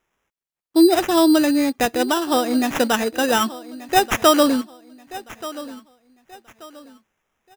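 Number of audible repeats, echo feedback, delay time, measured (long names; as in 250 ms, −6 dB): 2, 31%, 1,182 ms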